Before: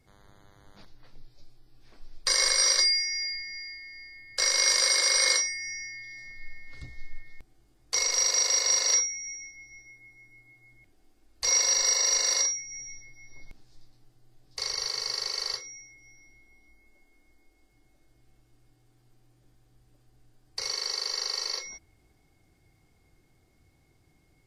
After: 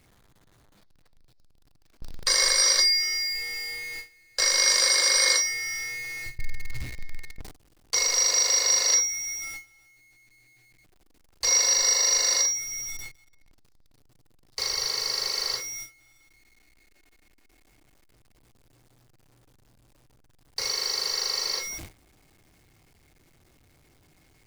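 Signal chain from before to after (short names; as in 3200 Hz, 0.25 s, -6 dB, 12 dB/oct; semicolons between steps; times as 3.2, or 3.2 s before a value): zero-crossing step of -35.5 dBFS; gate with hold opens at -31 dBFS; 6.26–6.82 resonant low shelf 150 Hz +8 dB, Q 3; gain +1.5 dB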